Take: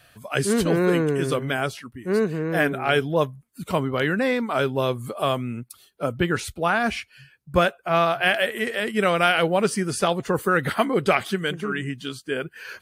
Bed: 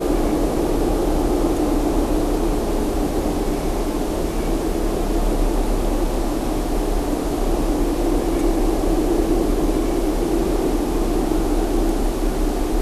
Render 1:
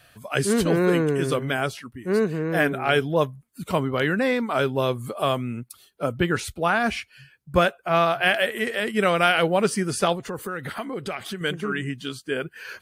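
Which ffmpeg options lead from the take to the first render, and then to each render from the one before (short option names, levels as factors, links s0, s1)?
-filter_complex "[0:a]asettb=1/sr,asplit=3[s0][s1][s2];[s0]atrim=end=10.154[s3];[s1]atrim=start=10.15:end=11.41,asetpts=PTS-STARTPTS,afade=t=in:d=0.004:c=qsin,afade=t=out:st=1.256:d=0.004:c=qsin,acompressor=threshold=0.0316:ratio=3:attack=3.2:release=140:knee=1:detection=peak[s4];[s2]atrim=start=11.406[s5];[s3][s4]acrossfade=d=0.004:c1=hsin:c2=qsin[s6];[s6][s5]acrossfade=d=0.004:c1=qsin:c2=hsin"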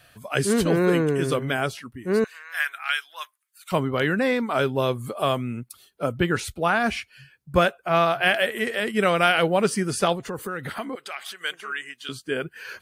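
-filter_complex "[0:a]asettb=1/sr,asplit=3[s0][s1][s2];[s0]atrim=end=2.244[s3];[s1]atrim=start=2.24:end=3.72,asetpts=PTS-STARTPTS,afade=t=in:d=0.004:c=qsin,afade=t=out:st=1.476:d=0.004:c=qsin,highpass=f=1300:w=0.5412,highpass=f=1300:w=1.3066[s4];[s2]atrim=start=3.716[s5];[s3][s4]acrossfade=d=0.004:c1=hsin:c2=qsin[s6];[s6][s5]acrossfade=d=0.004:c1=qsin:c2=hsin,asettb=1/sr,asplit=3[s7][s8][s9];[s7]atrim=end=10.954[s10];[s8]atrim=start=10.95:end=12.09,asetpts=PTS-STARTPTS,afade=t=in:d=0.004:c=qsin,afade=t=out:st=1.136:d=0.004:c=qsin,highpass=940[s11];[s9]atrim=start=12.086[s12];[s10][s11]acrossfade=d=0.004:c1=hsin:c2=qsin[s13];[s13][s12]acrossfade=d=0.004:c1=qsin:c2=hsin"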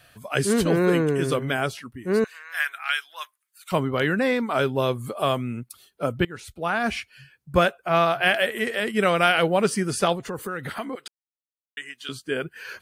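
-filter_complex "[0:a]asplit=4[s0][s1][s2][s3];[s0]atrim=end=6.25,asetpts=PTS-STARTPTS,afade=t=out:st=6.246:d=0.004:c=hsin:silence=0.0944061[s4];[s1]atrim=start=6.25:end=11.08,asetpts=PTS-STARTPTS,afade=t=in:d=0.73:silence=0.0944061,afade=t=out:st=4.826:d=0.004:c=hsin[s5];[s2]atrim=start=11.08:end=11.77,asetpts=PTS-STARTPTS,volume=0[s6];[s3]atrim=start=11.77,asetpts=PTS-STARTPTS,afade=t=in:d=0.004:c=hsin[s7];[s4][s5][s6][s7]concat=n=4:v=0:a=1"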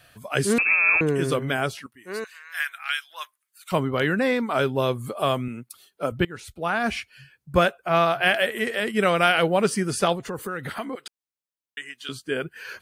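-filter_complex "[0:a]asettb=1/sr,asplit=3[s0][s1][s2];[s0]atrim=end=0.584[s3];[s1]atrim=start=0.58:end=1.01,asetpts=PTS-STARTPTS,afade=t=in:d=0.004:c=qsin,afade=t=out:st=0.426:d=0.004:c=qsin,lowpass=f=2400:t=q:w=0.5098,lowpass=f=2400:t=q:w=0.6013,lowpass=f=2400:t=q:w=0.9,lowpass=f=2400:t=q:w=2.563,afreqshift=-2800[s4];[s2]atrim=start=1.006[s5];[s3][s4]acrossfade=d=0.004:c1=hsin:c2=qsin[s6];[s6][s5]acrossfade=d=0.004:c1=qsin:c2=hsin,asettb=1/sr,asplit=3[s7][s8][s9];[s7]atrim=end=1.864[s10];[s8]atrim=start=1.86:end=3.11,asetpts=PTS-STARTPTS,afade=t=in:d=0.004:c=qsin,afade=t=out:st=1.246:d=0.004:c=qsin,highpass=f=1400:p=1[s11];[s9]atrim=start=3.106[s12];[s10][s11]acrossfade=d=0.004:c1=hsin:c2=qsin[s13];[s13][s12]acrossfade=d=0.004:c1=qsin:c2=hsin,asettb=1/sr,asplit=3[s14][s15][s16];[s14]atrim=end=5.484[s17];[s15]atrim=start=5.48:end=6.12,asetpts=PTS-STARTPTS,afade=t=in:d=0.004:c=qsin,afade=t=out:st=0.636:d=0.004:c=qsin,highpass=f=230:p=1[s18];[s16]atrim=start=6.116[s19];[s17][s18]acrossfade=d=0.004:c1=hsin:c2=qsin[s20];[s20][s19]acrossfade=d=0.004:c1=qsin:c2=hsin"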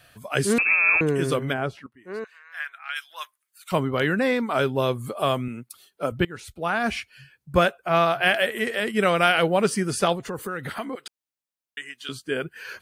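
-filter_complex "[0:a]asplit=3[s0][s1][s2];[s0]afade=t=out:st=1.52:d=0.02[s3];[s1]lowpass=f=1200:p=1,afade=t=in:st=1.52:d=0.02,afade=t=out:st=2.95:d=0.02[s4];[s2]afade=t=in:st=2.95:d=0.02[s5];[s3][s4][s5]amix=inputs=3:normalize=0"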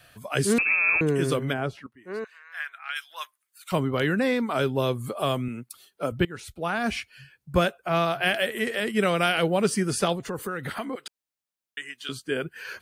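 -filter_complex "[0:a]acrossover=split=430|3000[s0][s1][s2];[s1]acompressor=threshold=0.0251:ratio=1.5[s3];[s0][s3][s2]amix=inputs=3:normalize=0"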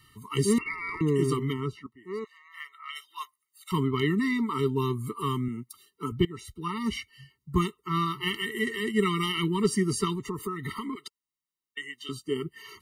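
-af "aeval=exprs='0.376*(cos(1*acos(clip(val(0)/0.376,-1,1)))-cos(1*PI/2))+0.0237*(cos(2*acos(clip(val(0)/0.376,-1,1)))-cos(2*PI/2))+0.00211*(cos(8*acos(clip(val(0)/0.376,-1,1)))-cos(8*PI/2))':c=same,afftfilt=real='re*eq(mod(floor(b*sr/1024/450),2),0)':imag='im*eq(mod(floor(b*sr/1024/450),2),0)':win_size=1024:overlap=0.75"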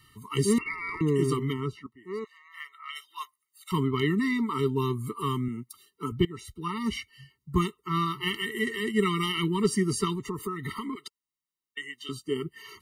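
-af anull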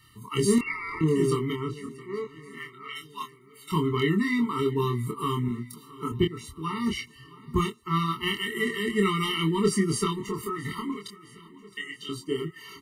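-filter_complex "[0:a]asplit=2[s0][s1];[s1]adelay=25,volume=0.668[s2];[s0][s2]amix=inputs=2:normalize=0,aecho=1:1:667|1334|2001|2668|3335:0.0944|0.0548|0.0318|0.0184|0.0107"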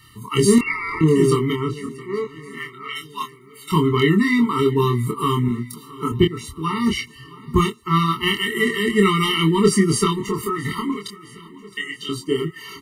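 -af "volume=2.51,alimiter=limit=0.708:level=0:latency=1"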